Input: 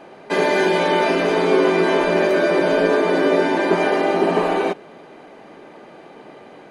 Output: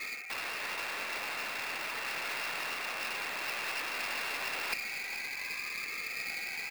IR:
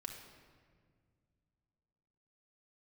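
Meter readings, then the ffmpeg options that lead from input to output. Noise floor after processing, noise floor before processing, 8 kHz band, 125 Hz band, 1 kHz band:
−40 dBFS, −43 dBFS, can't be measured, −29.0 dB, −18.5 dB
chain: -af "afftfilt=real='re*pow(10,11/40*sin(2*PI*(1.6*log(max(b,1)*sr/1024/100)/log(2)-(-0.66)*(pts-256)/sr)))':imag='im*pow(10,11/40*sin(2*PI*(1.6*log(max(b,1)*sr/1024/100)/log(2)-(-0.66)*(pts-256)/sr)))':win_size=1024:overlap=0.75,aeval=exprs='(mod(7.94*val(0)+1,2)-1)/7.94':channel_layout=same,afftfilt=real='re*gte(hypot(re,im),0.00501)':imag='im*gte(hypot(re,im),0.00501)':win_size=1024:overlap=0.75,lowshelf=frequency=110:gain=5,areverse,acompressor=threshold=-33dB:ratio=8,areverse,lowpass=frequency=2400:width_type=q:width=0.5098,lowpass=frequency=2400:width_type=q:width=0.6013,lowpass=frequency=2400:width_type=q:width=0.9,lowpass=frequency=2400:width_type=q:width=2.563,afreqshift=-2800,aeval=exprs='clip(val(0),-1,0.00531)':channel_layout=same,aemphasis=mode=production:type=bsi,aecho=1:1:426:0.188,volume=2dB"

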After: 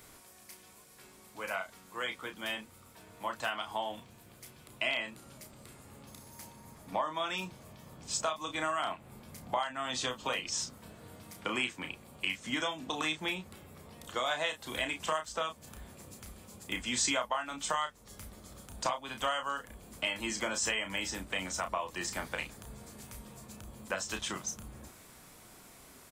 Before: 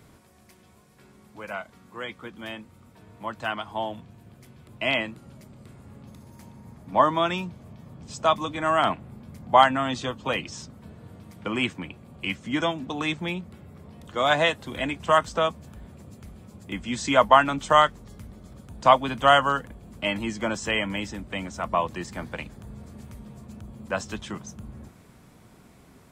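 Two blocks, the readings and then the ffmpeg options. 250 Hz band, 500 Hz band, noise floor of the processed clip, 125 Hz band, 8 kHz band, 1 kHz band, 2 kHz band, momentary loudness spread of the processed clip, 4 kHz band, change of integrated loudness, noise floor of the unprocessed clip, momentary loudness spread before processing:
−11.5 dB, −12.5 dB, −57 dBFS, −13.0 dB, +4.5 dB, −13.0 dB, −7.0 dB, 20 LU, −5.5 dB, −10.5 dB, −54 dBFS, 23 LU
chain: -filter_complex "[0:a]equalizer=frequency=130:width_type=o:width=2.9:gain=-10.5,acompressor=threshold=-32dB:ratio=6,highshelf=frequency=5100:gain=10,asplit=2[link_01][link_02];[link_02]adelay=32,volume=-7dB[link_03];[link_01][link_03]amix=inputs=2:normalize=0"

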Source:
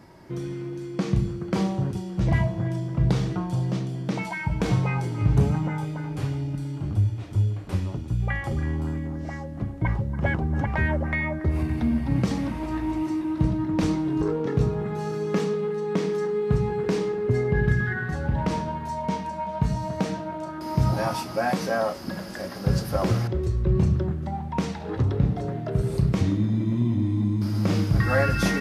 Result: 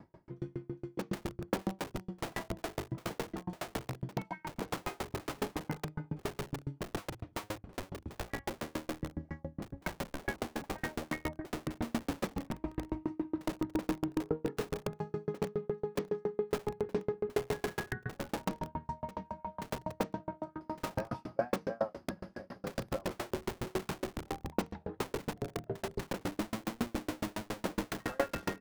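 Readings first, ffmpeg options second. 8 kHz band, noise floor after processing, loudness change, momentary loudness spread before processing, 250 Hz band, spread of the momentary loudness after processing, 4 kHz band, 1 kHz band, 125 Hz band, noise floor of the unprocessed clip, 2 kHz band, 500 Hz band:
−5.5 dB, −64 dBFS, −13.0 dB, 8 LU, −12.5 dB, 7 LU, −6.5 dB, −9.5 dB, −20.0 dB, −35 dBFS, −11.0 dB, −9.0 dB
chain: -filter_complex "[0:a]lowpass=frequency=1200:poles=1,acrossover=split=220[link_01][link_02];[link_01]aeval=exprs='(mod(23.7*val(0)+1,2)-1)/23.7':channel_layout=same[link_03];[link_03][link_02]amix=inputs=2:normalize=0,aeval=exprs='val(0)*pow(10,-38*if(lt(mod(7.2*n/s,1),2*abs(7.2)/1000),1-mod(7.2*n/s,1)/(2*abs(7.2)/1000),(mod(7.2*n/s,1)-2*abs(7.2)/1000)/(1-2*abs(7.2)/1000))/20)':channel_layout=same"

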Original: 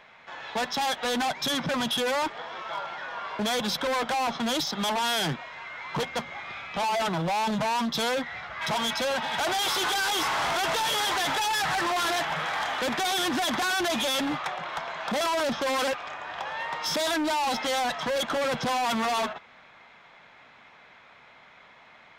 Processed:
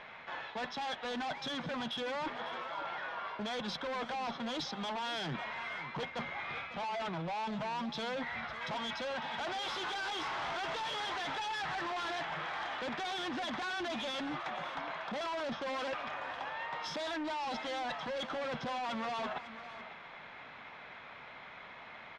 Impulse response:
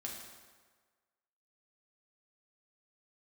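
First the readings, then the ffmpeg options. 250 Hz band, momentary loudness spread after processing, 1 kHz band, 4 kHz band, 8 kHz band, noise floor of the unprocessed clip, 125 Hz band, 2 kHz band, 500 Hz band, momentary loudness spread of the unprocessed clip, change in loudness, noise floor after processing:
−10.0 dB, 10 LU, −10.0 dB, −11.5 dB, −19.5 dB, −53 dBFS, −9.5 dB, −9.5 dB, −10.0 dB, 9 LU, −10.5 dB, −51 dBFS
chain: -af "lowpass=4100,areverse,acompressor=threshold=-40dB:ratio=12,areverse,aecho=1:1:550:0.211,volume=3dB"

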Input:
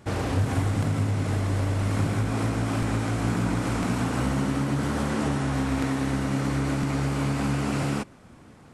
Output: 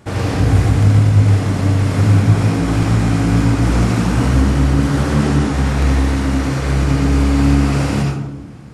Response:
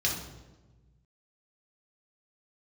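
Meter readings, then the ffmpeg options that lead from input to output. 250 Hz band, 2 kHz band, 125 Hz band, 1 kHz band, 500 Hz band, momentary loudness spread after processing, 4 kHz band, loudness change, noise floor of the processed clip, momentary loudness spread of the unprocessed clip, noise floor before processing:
+10.0 dB, +8.0 dB, +13.0 dB, +7.5 dB, +8.5 dB, 6 LU, +9.0 dB, +11.5 dB, −29 dBFS, 1 LU, −50 dBFS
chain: -filter_complex "[0:a]asplit=2[link_01][link_02];[1:a]atrim=start_sample=2205,adelay=75[link_03];[link_02][link_03]afir=irnorm=-1:irlink=0,volume=-8dB[link_04];[link_01][link_04]amix=inputs=2:normalize=0,volume=5dB"

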